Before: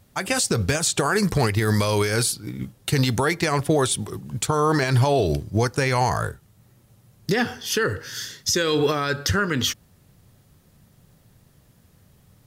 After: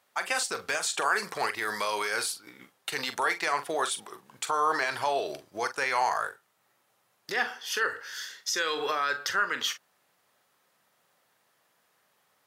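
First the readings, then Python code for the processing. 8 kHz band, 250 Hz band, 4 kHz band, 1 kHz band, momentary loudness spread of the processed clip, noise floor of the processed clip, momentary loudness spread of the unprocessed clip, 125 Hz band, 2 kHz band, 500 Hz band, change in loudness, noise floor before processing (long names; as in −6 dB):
−8.5 dB, −20.0 dB, −6.0 dB, −2.5 dB, 9 LU, −71 dBFS, 8 LU, −32.5 dB, −2.0 dB, −10.5 dB, −7.0 dB, −58 dBFS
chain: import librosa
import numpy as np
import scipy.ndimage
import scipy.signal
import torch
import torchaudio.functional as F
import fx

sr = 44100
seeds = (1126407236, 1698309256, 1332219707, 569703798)

y = scipy.signal.sosfilt(scipy.signal.butter(2, 940.0, 'highpass', fs=sr, output='sos'), x)
y = fx.high_shelf(y, sr, hz=2600.0, db=-11.5)
y = fx.doubler(y, sr, ms=43.0, db=-11.0)
y = y * 10.0 ** (1.5 / 20.0)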